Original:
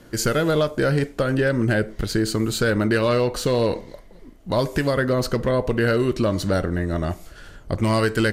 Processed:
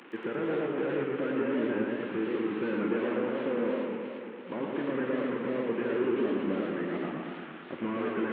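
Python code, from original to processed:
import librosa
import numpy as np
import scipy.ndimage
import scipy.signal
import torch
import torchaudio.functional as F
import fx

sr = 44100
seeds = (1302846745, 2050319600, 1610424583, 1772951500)

y = fx.delta_mod(x, sr, bps=16000, step_db=-35.5)
y = scipy.signal.sosfilt(scipy.signal.butter(4, 240.0, 'highpass', fs=sr, output='sos'), y)
y = fx.peak_eq(y, sr, hz=640.0, db=-10.5, octaves=0.36)
y = fx.echo_feedback(y, sr, ms=161, feedback_pct=59, wet_db=-10.0)
y = fx.echo_warbled(y, sr, ms=115, feedback_pct=68, rate_hz=2.8, cents=168, wet_db=-3)
y = y * librosa.db_to_amplitude(-6.5)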